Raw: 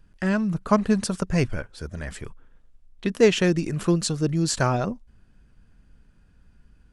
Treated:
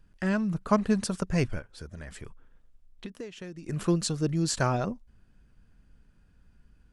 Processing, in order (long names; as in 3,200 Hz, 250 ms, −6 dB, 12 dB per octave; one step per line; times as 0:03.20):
0:01.58–0:03.69: downward compressor 20 to 1, threshold −33 dBFS, peak gain reduction 22.5 dB
level −4 dB